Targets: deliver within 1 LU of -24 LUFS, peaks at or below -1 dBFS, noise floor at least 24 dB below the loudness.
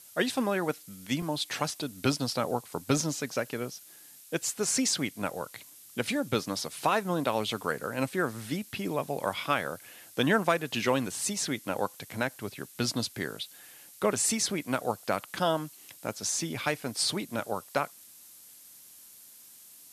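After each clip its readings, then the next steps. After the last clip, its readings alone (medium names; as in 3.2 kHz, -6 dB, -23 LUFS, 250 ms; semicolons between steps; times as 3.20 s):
dropouts 1; longest dropout 2.8 ms; noise floor -53 dBFS; noise floor target -55 dBFS; loudness -30.5 LUFS; peak level -11.5 dBFS; loudness target -24.0 LUFS
-> interpolate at 1.22 s, 2.8 ms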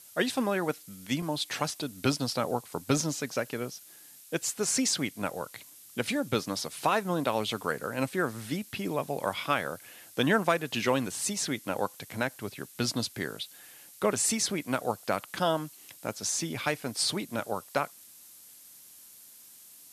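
dropouts 0; noise floor -53 dBFS; noise floor target -55 dBFS
-> noise print and reduce 6 dB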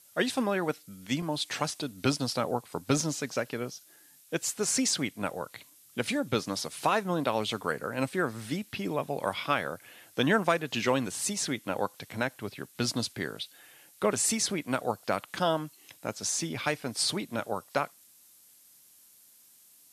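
noise floor -58 dBFS; loudness -31.0 LUFS; peak level -11.5 dBFS; loudness target -24.0 LUFS
-> trim +7 dB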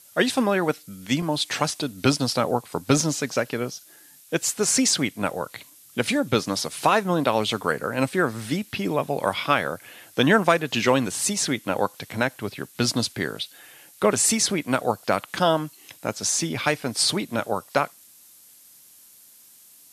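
loudness -24.0 LUFS; peak level -4.5 dBFS; noise floor -51 dBFS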